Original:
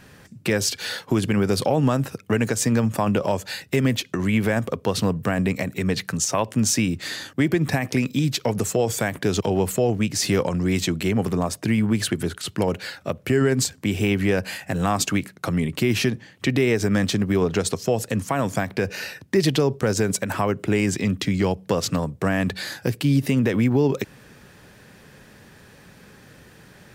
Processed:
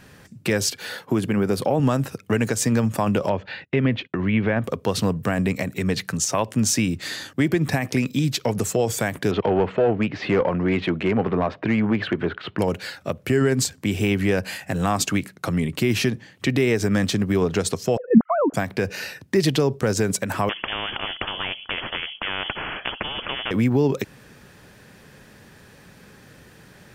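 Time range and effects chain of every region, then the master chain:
0.7–1.8 HPF 110 Hz + bell 5400 Hz -7 dB 2.1 oct
3.29–4.64 LPF 3200 Hz 24 dB/oct + gate -45 dBFS, range -22 dB
9.31–12.59 LPF 3300 Hz 24 dB/oct + overdrive pedal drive 16 dB, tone 1200 Hz, clips at -9 dBFS
17.97–18.54 sine-wave speech + LPF 1400 Hz 24 dB/oct + low shelf 450 Hz +11 dB
20.49–23.51 inverted band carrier 3200 Hz + spectral compressor 4:1
whole clip: dry

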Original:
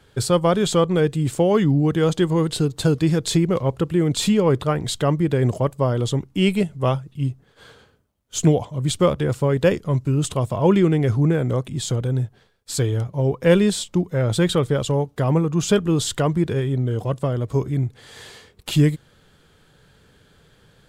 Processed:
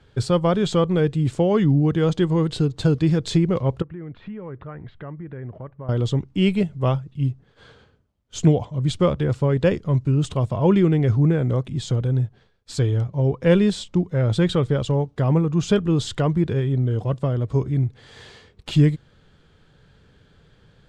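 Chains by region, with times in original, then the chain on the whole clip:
3.82–5.89 compressor 2.5:1, threshold -26 dBFS + ladder low-pass 2200 Hz, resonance 40%
whole clip: LPF 5600 Hz 12 dB/oct; low shelf 210 Hz +6 dB; gain -3 dB

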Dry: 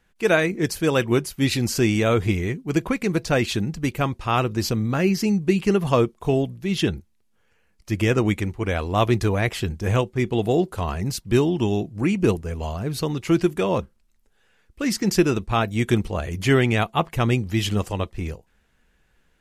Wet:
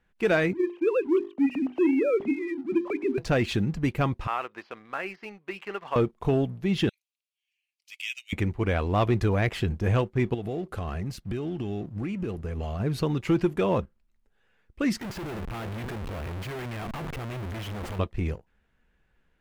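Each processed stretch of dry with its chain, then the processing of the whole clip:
0.53–3.18 sine-wave speech + bell 1500 Hz -14 dB 0.8 oct + notches 50/100/150/200/250/300/350/400 Hz
4.27–5.96 de-esser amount 80% + HPF 930 Hz + air absorption 280 m
6.89–8.33 steep high-pass 2400 Hz 48 dB/oct + comb 5.1 ms, depth 31%
10.34–12.8 compressor, threshold -29 dBFS + notch 950 Hz, Q 5.8
15.01–17.99 notch 270 Hz, Q 8.2 + compressor 16:1, threshold -29 dBFS + Schmitt trigger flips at -51.5 dBFS
whole clip: tone controls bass +1 dB, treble -11 dB; sample leveller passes 1; compressor 1.5:1, threshold -21 dBFS; gain -3.5 dB

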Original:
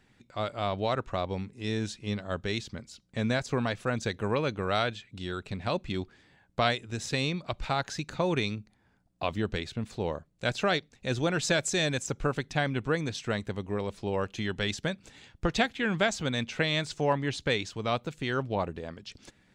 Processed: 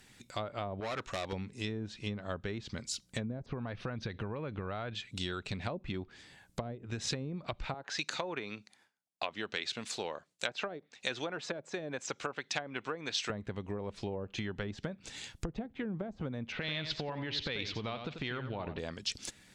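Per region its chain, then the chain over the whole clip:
0.8–1.33 hard clip -31 dBFS + low shelf 180 Hz -9 dB + notch 4800 Hz, Q 25
3.46–4.95 low shelf 150 Hz +7 dB + compressor 2:1, threshold -31 dBFS + polynomial smoothing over 15 samples
7.74–13.3 weighting filter A + gate with hold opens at -58 dBFS, closes at -67 dBFS
16.52–18.79 LPF 4100 Hz 24 dB/oct + compressor 12:1, threshold -31 dBFS + feedback echo 90 ms, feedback 24%, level -9.5 dB
whole clip: treble ducked by the level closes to 410 Hz, closed at -24 dBFS; compressor, threshold -36 dBFS; pre-emphasis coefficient 0.8; gain +15 dB

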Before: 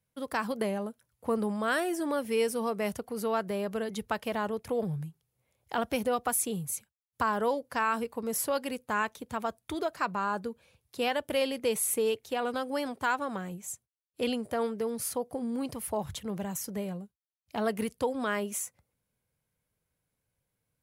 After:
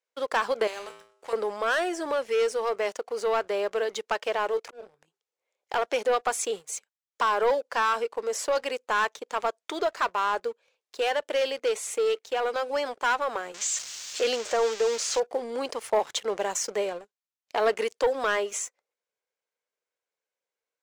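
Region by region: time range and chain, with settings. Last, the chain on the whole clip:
0.67–1.33 resonator 57 Hz, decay 0.64 s, harmonics odd, mix 80% + spectral compressor 2:1
4.52–5.08 doubler 20 ms -10.5 dB + auto swell 0.639 s
13.54–15.2 switching spikes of -24.5 dBFS + LPF 7300 Hz 24 dB/oct
whole clip: Chebyshev band-pass 420–7100 Hz, order 3; sample leveller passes 2; vocal rider 2 s

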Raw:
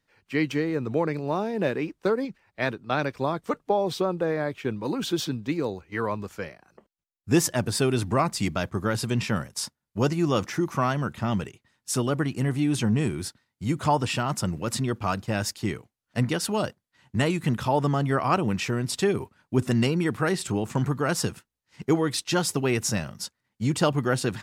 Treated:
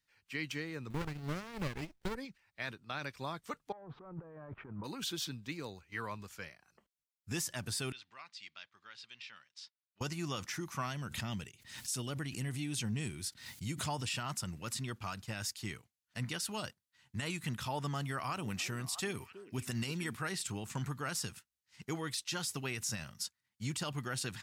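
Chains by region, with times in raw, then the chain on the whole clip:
0.9–2.15 G.711 law mismatch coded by mu + transient shaper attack +11 dB, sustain -7 dB + running maximum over 33 samples
3.72–4.84 sample leveller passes 2 + negative-ratio compressor -32 dBFS + Chebyshev low-pass 1200 Hz, order 3
7.92–10.01 LPF 3800 Hz 24 dB/oct + differentiator
10.86–14.12 bell 1200 Hz -5.5 dB 1.2 oct + backwards sustainer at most 85 dB/s
17.95–20.15 high shelf 8700 Hz +6.5 dB + delay with a stepping band-pass 0.322 s, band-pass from 340 Hz, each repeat 1.4 oct, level -10.5 dB
whole clip: passive tone stack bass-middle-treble 5-5-5; limiter -30 dBFS; gain +3 dB

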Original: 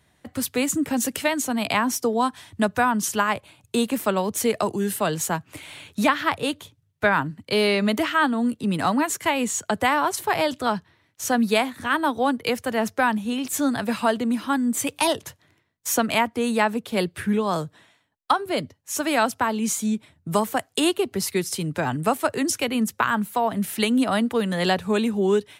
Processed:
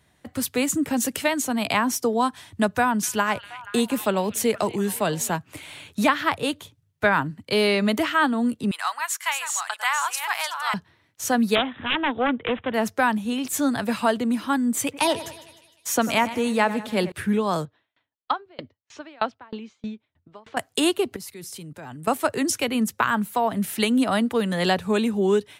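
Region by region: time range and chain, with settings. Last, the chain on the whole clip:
2.79–5.36 bell 1200 Hz -3.5 dB 0.35 oct + delay with a stepping band-pass 0.238 s, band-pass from 2800 Hz, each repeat -0.7 oct, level -10.5 dB
8.71–10.74 reverse delay 0.529 s, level -6 dB + HPF 990 Hz 24 dB/oct
11.55–12.74 self-modulated delay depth 0.39 ms + careless resampling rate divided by 6×, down none, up filtered
14.82–17.12 high shelf 10000 Hz -5 dB + split-band echo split 2300 Hz, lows 95 ms, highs 0.153 s, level -14 dB
17.65–20.57 LPF 4100 Hz 24 dB/oct + bell 170 Hz -13 dB 0.44 oct + dB-ramp tremolo decaying 3.2 Hz, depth 32 dB
21.16–22.11 high shelf 11000 Hz +5 dB + level quantiser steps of 19 dB
whole clip: dry

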